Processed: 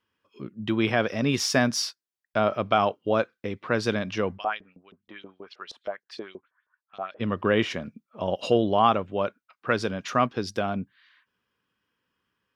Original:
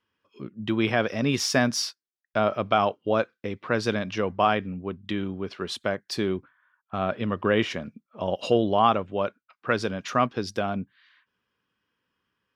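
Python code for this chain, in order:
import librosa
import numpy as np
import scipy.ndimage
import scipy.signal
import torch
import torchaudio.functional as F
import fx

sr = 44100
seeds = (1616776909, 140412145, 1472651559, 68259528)

y = fx.filter_lfo_bandpass(x, sr, shape='saw_up', hz=6.3, low_hz=440.0, high_hz=6200.0, q=2.6, at=(4.37, 7.19), fade=0.02)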